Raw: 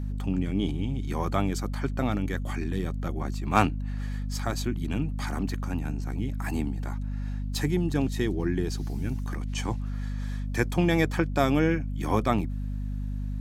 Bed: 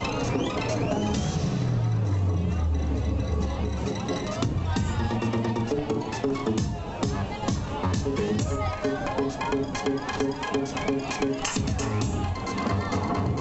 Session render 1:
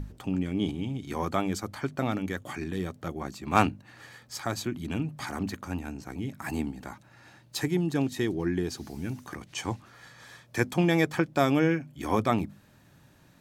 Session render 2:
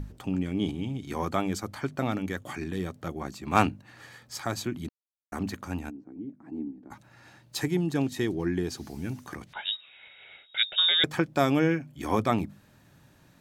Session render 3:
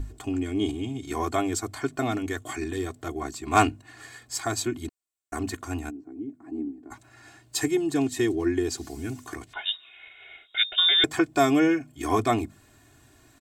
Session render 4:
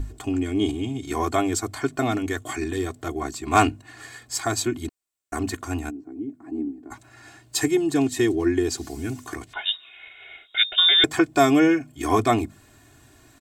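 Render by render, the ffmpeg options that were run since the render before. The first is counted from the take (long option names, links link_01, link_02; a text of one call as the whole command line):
ffmpeg -i in.wav -af "bandreject=frequency=50:width_type=h:width=6,bandreject=frequency=100:width_type=h:width=6,bandreject=frequency=150:width_type=h:width=6,bandreject=frequency=200:width_type=h:width=6,bandreject=frequency=250:width_type=h:width=6" out.wav
ffmpeg -i in.wav -filter_complex "[0:a]asplit=3[link_01][link_02][link_03];[link_01]afade=type=out:start_time=5.89:duration=0.02[link_04];[link_02]bandpass=frequency=290:width_type=q:width=3.2,afade=type=in:start_time=5.89:duration=0.02,afade=type=out:start_time=6.9:duration=0.02[link_05];[link_03]afade=type=in:start_time=6.9:duration=0.02[link_06];[link_04][link_05][link_06]amix=inputs=3:normalize=0,asettb=1/sr,asplit=3[link_07][link_08][link_09];[link_07]atrim=end=9.534[link_10];[link_08]atrim=start=9.53:end=11.04,asetpts=PTS-STARTPTS,afade=type=in:duration=0.004:curve=qsin,afade=type=out:start_time=1.506:duration=0.004:curve=qsin,lowpass=frequency=3300:width_type=q:width=0.5098,lowpass=frequency=3300:width_type=q:width=0.6013,lowpass=frequency=3300:width_type=q:width=0.9,lowpass=frequency=3300:width_type=q:width=2.563,afreqshift=-3900[link_11];[link_09]atrim=start=11.036[link_12];[link_10][link_11]acrossfade=duration=0.004:curve1=hsin:curve2=qsin[link_13];[link_13][link_12]acrossfade=duration=0.004:curve1=qsin:curve2=hsin,asplit=3[link_14][link_15][link_16];[link_14]atrim=end=4.89,asetpts=PTS-STARTPTS,afade=type=out:start_time=4.886:duration=0.004:curve=hsin[link_17];[link_15]atrim=start=4.89:end=5.32,asetpts=PTS-STARTPTS,volume=0[link_18];[link_16]atrim=start=5.32,asetpts=PTS-STARTPTS,afade=type=in:duration=0.004:curve=hsin[link_19];[link_17][link_18][link_19]concat=n=3:v=0:a=1" out.wav
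ffmpeg -i in.wav -af "equalizer=frequency=7800:width_type=o:width=0.34:gain=10.5,aecho=1:1:2.8:0.93" out.wav
ffmpeg -i in.wav -af "volume=3.5dB,alimiter=limit=-3dB:level=0:latency=1" out.wav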